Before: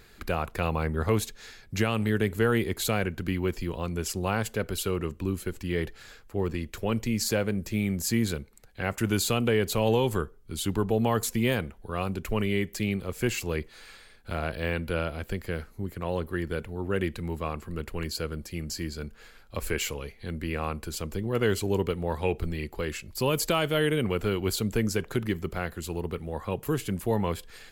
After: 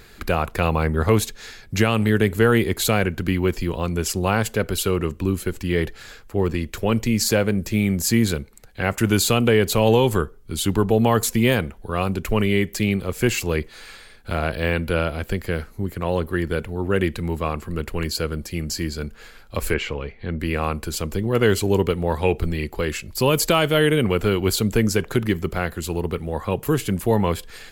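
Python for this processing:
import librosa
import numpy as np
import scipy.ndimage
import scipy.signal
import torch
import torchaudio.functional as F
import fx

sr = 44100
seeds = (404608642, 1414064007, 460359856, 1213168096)

y = fx.lowpass(x, sr, hz=2700.0, slope=12, at=(19.74, 20.4))
y = F.gain(torch.from_numpy(y), 7.5).numpy()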